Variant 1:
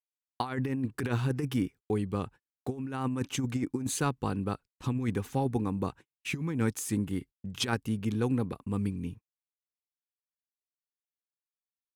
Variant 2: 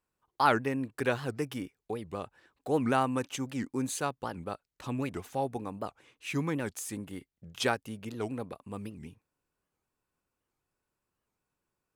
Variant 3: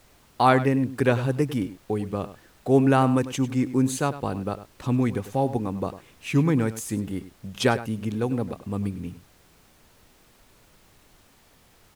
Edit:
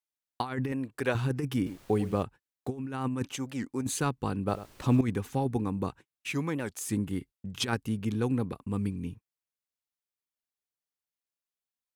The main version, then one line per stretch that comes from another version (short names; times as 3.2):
1
0.72–1.15 from 2
1.66–2.23 from 3
3.32–3.81 from 2
4.48–5.01 from 3
6.32–6.81 from 2